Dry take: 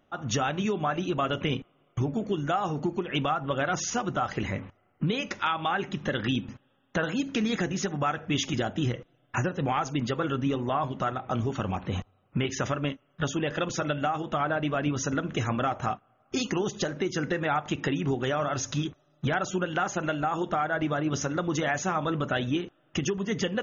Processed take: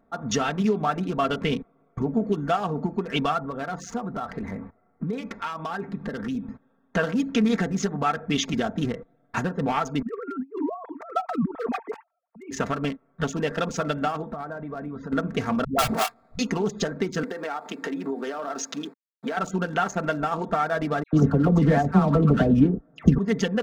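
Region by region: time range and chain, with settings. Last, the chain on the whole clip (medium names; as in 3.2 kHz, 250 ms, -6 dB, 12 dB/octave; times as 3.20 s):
3.40–6.47 s: treble shelf 4.1 kHz -8 dB + compression 2:1, threshold -33 dBFS
10.02–12.51 s: formants replaced by sine waves + compressor with a negative ratio -32 dBFS, ratio -0.5 + three bands expanded up and down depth 100%
14.24–15.12 s: distance through air 190 m + compression 4:1, threshold -34 dBFS
15.64–16.39 s: square wave that keeps the level + phase dispersion highs, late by 146 ms, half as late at 310 Hz
17.23–19.37 s: send-on-delta sampling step -48 dBFS + high-pass 250 Hz 24 dB/octave + compression 16:1, threshold -28 dBFS
21.03–23.18 s: high-pass 47 Hz + tilt EQ -4.5 dB/octave + phase dispersion lows, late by 101 ms, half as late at 1.6 kHz
whole clip: local Wiener filter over 15 samples; comb 4.4 ms; trim +2.5 dB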